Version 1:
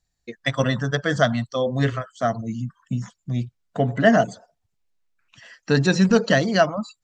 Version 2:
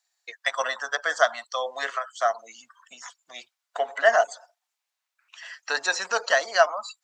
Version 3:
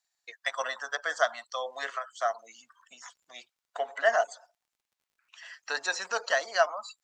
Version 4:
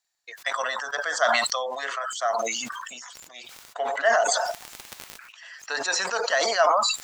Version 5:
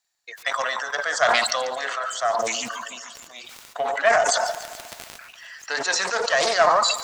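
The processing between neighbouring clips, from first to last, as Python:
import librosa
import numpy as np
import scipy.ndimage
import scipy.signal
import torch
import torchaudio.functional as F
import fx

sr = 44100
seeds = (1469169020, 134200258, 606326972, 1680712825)

y1 = scipy.signal.sosfilt(scipy.signal.butter(4, 750.0, 'highpass', fs=sr, output='sos'), x)
y1 = fx.dynamic_eq(y1, sr, hz=3000.0, q=0.74, threshold_db=-39.0, ratio=4.0, max_db=-8)
y1 = y1 * 10.0 ** (5.0 / 20.0)
y2 = fx.dmg_crackle(y1, sr, seeds[0], per_s=38.0, level_db=-55.0)
y2 = y2 * 10.0 ** (-5.5 / 20.0)
y3 = fx.sustainer(y2, sr, db_per_s=26.0)
y3 = y3 * 10.0 ** (2.0 / 20.0)
y4 = fx.echo_feedback(y3, sr, ms=143, feedback_pct=59, wet_db=-15)
y4 = fx.doppler_dist(y4, sr, depth_ms=0.25)
y4 = y4 * 10.0 ** (2.5 / 20.0)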